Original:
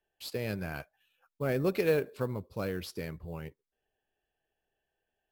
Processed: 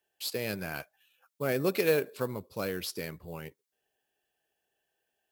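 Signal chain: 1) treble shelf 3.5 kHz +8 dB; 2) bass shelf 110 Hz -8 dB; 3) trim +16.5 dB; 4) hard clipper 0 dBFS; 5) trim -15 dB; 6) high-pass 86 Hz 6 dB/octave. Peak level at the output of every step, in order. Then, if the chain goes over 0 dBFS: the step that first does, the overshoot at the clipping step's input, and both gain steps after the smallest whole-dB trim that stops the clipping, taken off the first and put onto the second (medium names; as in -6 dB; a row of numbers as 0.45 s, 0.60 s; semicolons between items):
-13.0 dBFS, -13.0 dBFS, +3.5 dBFS, 0.0 dBFS, -15.0 dBFS, -14.0 dBFS; step 3, 3.5 dB; step 3 +12.5 dB, step 5 -11 dB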